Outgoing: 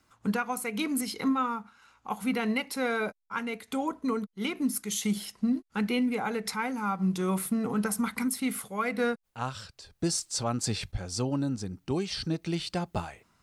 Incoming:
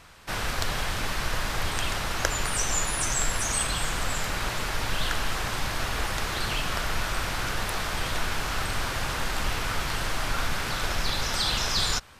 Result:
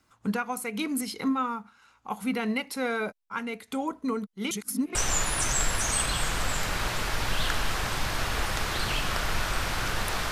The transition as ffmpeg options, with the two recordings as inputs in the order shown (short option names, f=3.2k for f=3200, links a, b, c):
-filter_complex "[0:a]apad=whole_dur=10.31,atrim=end=10.31,asplit=2[a][b];[a]atrim=end=4.512[c];[b]atrim=start=4.508:end=4.952,asetpts=PTS-STARTPTS,areverse[d];[1:a]atrim=start=2.558:end=7.92[e];[c][d]acrossfade=d=0.004:c1=hsin:c2=hsin[f];[f][e]acrossfade=d=0.004:c1=hsin:c2=hsin"